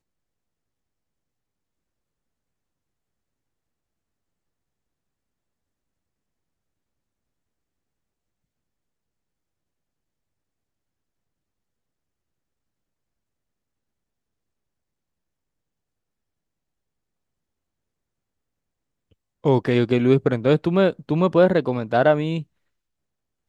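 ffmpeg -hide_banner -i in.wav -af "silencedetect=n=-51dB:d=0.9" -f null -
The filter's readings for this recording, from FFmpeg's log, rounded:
silence_start: 0.00
silence_end: 19.12 | silence_duration: 19.12
silence_start: 22.44
silence_end: 23.49 | silence_duration: 1.05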